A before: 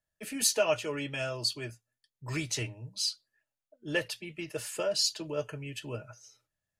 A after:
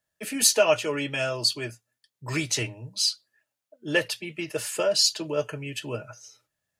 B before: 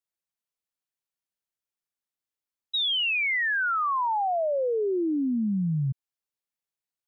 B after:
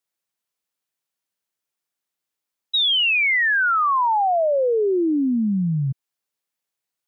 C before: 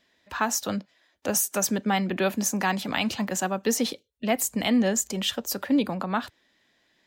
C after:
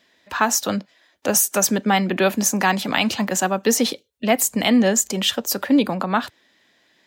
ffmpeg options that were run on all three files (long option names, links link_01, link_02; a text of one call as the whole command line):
ffmpeg -i in.wav -af "highpass=frequency=140:poles=1,volume=7dB" out.wav